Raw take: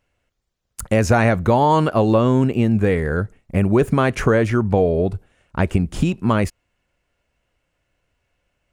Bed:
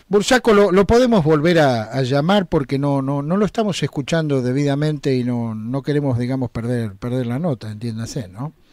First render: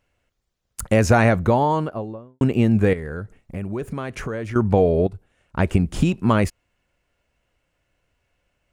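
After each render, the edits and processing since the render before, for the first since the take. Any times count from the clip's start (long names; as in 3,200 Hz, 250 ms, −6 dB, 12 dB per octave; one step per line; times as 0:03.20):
0:01.19–0:02.41: fade out and dull
0:02.93–0:04.56: downward compressor 2 to 1, threshold −34 dBFS
0:05.07–0:05.73: fade in, from −12 dB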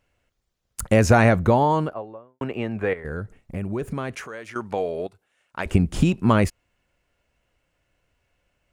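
0:01.93–0:03.05: three-way crossover with the lows and the highs turned down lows −14 dB, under 460 Hz, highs −16 dB, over 3,100 Hz
0:04.15–0:05.66: high-pass filter 1,200 Hz 6 dB per octave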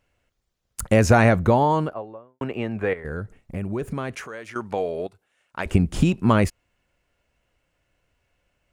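no processing that can be heard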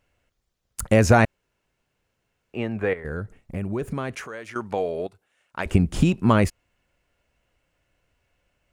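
0:01.25–0:02.54: fill with room tone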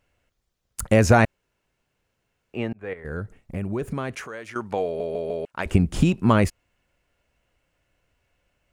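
0:02.73–0:03.17: fade in
0:04.85: stutter in place 0.15 s, 4 plays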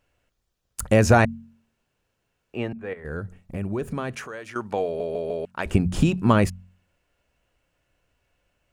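notch filter 2,100 Hz, Q 16
hum removal 45.5 Hz, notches 5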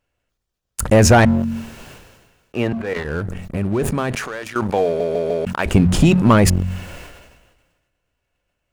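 leveller curve on the samples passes 2
level that may fall only so fast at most 42 dB per second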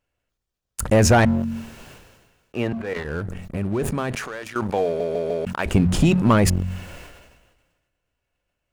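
level −4 dB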